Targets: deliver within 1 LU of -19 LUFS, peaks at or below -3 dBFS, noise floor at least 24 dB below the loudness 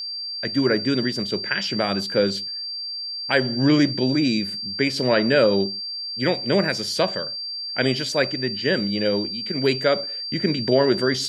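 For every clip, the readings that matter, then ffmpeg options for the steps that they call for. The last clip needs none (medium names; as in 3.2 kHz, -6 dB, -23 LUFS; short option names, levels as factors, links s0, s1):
steady tone 4.7 kHz; tone level -28 dBFS; loudness -22.0 LUFS; peak level -5.0 dBFS; loudness target -19.0 LUFS
-> -af "bandreject=f=4700:w=30"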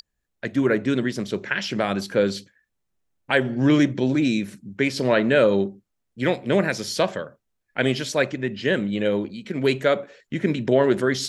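steady tone not found; loudness -22.5 LUFS; peak level -5.5 dBFS; loudness target -19.0 LUFS
-> -af "volume=1.5,alimiter=limit=0.708:level=0:latency=1"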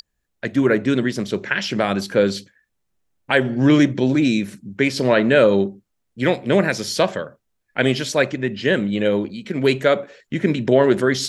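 loudness -19.0 LUFS; peak level -3.0 dBFS; noise floor -74 dBFS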